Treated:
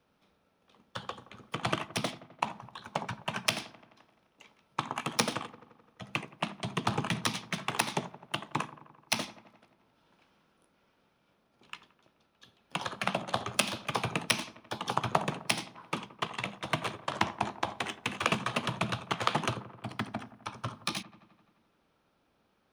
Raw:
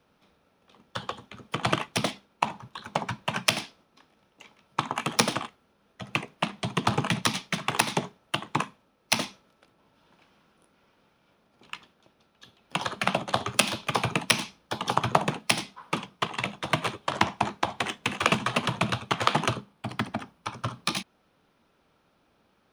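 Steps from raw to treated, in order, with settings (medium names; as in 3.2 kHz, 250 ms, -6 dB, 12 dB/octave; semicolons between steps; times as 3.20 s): feedback echo behind a low-pass 86 ms, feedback 67%, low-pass 1.5 kHz, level -15.5 dB; trim -5.5 dB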